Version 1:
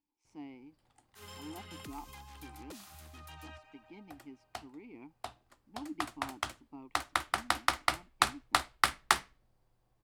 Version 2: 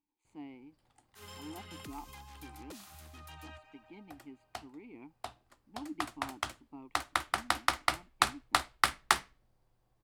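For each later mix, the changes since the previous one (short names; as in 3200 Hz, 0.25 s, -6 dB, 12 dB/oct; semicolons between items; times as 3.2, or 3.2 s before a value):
speech: add Butterworth band-stop 5500 Hz, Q 2.8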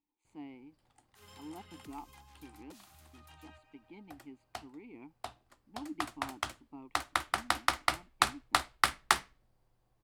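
first sound -7.0 dB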